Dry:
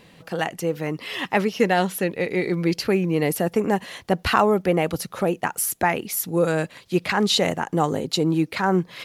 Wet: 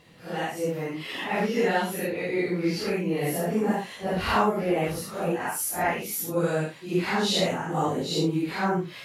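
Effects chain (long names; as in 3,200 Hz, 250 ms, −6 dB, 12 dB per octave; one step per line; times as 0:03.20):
random phases in long frames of 200 ms
level −4 dB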